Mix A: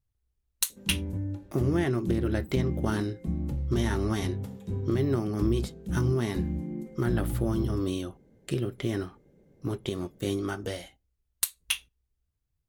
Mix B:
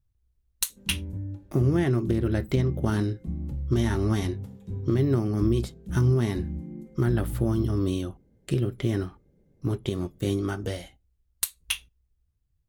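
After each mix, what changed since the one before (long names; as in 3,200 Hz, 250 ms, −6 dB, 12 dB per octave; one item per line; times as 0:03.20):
background −7.5 dB
master: add low-shelf EQ 210 Hz +8 dB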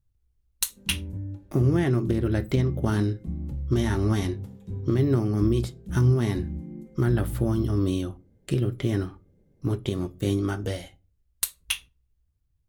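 speech: send +11.0 dB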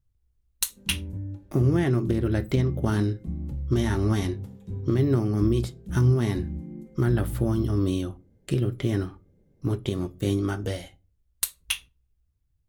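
nothing changed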